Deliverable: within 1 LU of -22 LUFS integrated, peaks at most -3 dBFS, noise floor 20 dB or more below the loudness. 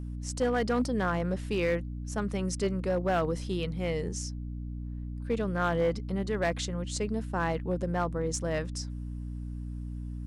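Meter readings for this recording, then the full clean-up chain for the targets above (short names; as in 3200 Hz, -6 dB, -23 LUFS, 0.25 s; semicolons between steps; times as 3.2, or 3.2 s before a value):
clipped 0.7%; flat tops at -21.0 dBFS; hum 60 Hz; harmonics up to 300 Hz; hum level -34 dBFS; loudness -31.5 LUFS; peak -21.0 dBFS; loudness target -22.0 LUFS
-> clip repair -21 dBFS; de-hum 60 Hz, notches 5; gain +9.5 dB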